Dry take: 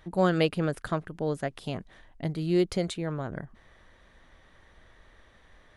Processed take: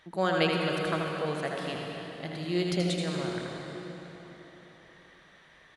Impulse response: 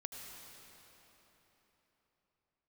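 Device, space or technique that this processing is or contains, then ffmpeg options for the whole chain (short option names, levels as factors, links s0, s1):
PA in a hall: -filter_complex "[0:a]highpass=f=200:p=1,equalizer=f=3200:t=o:w=2.8:g=7,aecho=1:1:80:0.473[s0];[1:a]atrim=start_sample=2205[s1];[s0][s1]afir=irnorm=-1:irlink=0"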